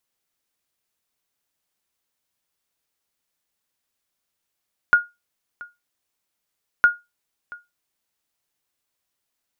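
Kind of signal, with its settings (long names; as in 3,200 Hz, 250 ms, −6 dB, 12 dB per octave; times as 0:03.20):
ping with an echo 1,430 Hz, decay 0.21 s, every 1.91 s, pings 2, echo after 0.68 s, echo −22.5 dB −6 dBFS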